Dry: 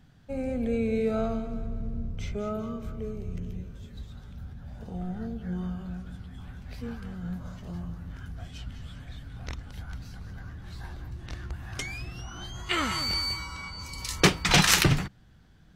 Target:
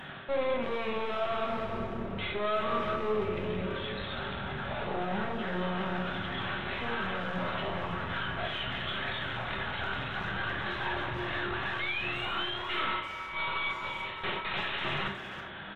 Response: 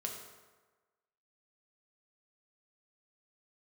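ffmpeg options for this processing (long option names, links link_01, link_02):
-filter_complex "[0:a]lowshelf=frequency=360:gain=-10,areverse,acompressor=threshold=-43dB:ratio=5,areverse,asplit=2[link_01][link_02];[link_02]highpass=frequency=720:poles=1,volume=28dB,asoftclip=type=tanh:threshold=-28dB[link_03];[link_01][link_03]amix=inputs=2:normalize=0,lowpass=frequency=2400:poles=1,volume=-6dB,aresample=8000,aeval=exprs='clip(val(0),-1,0.00355)':channel_layout=same,aresample=44100,asplit=2[link_04][link_05];[link_05]adelay=330,highpass=300,lowpass=3400,asoftclip=type=hard:threshold=-39dB,volume=-11dB[link_06];[link_04][link_06]amix=inputs=2:normalize=0[link_07];[1:a]atrim=start_sample=2205,atrim=end_sample=3969,asetrate=39690,aresample=44100[link_08];[link_07][link_08]afir=irnorm=-1:irlink=0,volume=8.5dB"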